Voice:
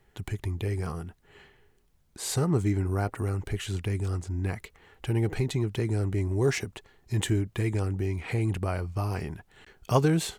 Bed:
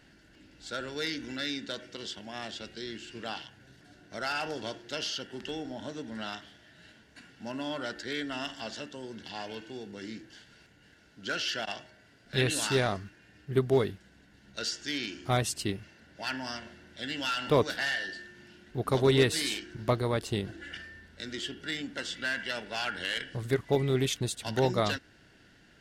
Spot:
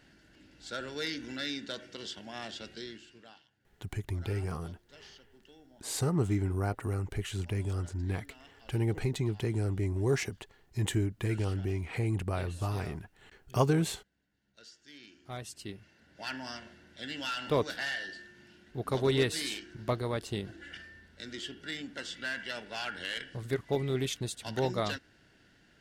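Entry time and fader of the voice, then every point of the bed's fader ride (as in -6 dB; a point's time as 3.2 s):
3.65 s, -3.5 dB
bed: 2.8 s -2 dB
3.4 s -20.5 dB
14.81 s -20.5 dB
16.22 s -4 dB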